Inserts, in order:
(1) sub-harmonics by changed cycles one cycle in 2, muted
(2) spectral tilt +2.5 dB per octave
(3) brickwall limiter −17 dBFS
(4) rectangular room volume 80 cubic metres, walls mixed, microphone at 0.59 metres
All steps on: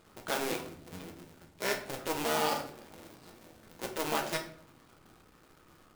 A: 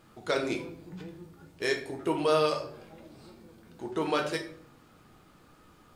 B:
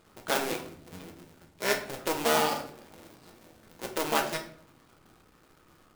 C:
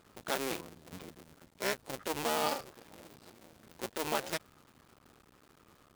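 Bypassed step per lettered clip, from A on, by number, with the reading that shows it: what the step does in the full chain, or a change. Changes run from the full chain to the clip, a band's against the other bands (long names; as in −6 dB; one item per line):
1, 8 kHz band −10.0 dB
3, change in crest factor +2.5 dB
4, echo-to-direct ratio −2.0 dB to none audible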